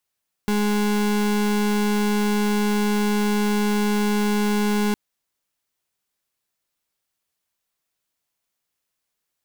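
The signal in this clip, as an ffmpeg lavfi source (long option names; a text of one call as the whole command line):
ffmpeg -f lavfi -i "aevalsrc='0.0944*(2*lt(mod(208*t,1),0.34)-1)':duration=4.46:sample_rate=44100" out.wav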